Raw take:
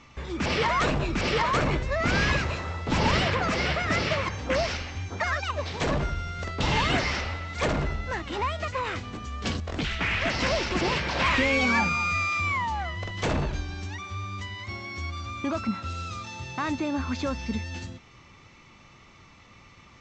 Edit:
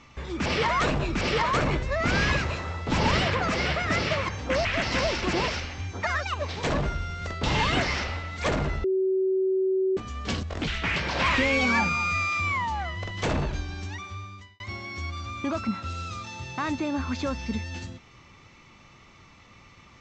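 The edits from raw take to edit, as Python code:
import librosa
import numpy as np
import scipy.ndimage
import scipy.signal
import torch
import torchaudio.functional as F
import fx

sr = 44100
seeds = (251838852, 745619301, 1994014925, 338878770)

y = fx.edit(x, sr, fx.bleep(start_s=8.01, length_s=1.13, hz=379.0, db=-21.0),
    fx.move(start_s=10.13, length_s=0.83, to_s=4.65),
    fx.fade_out_span(start_s=13.97, length_s=0.63), tone=tone)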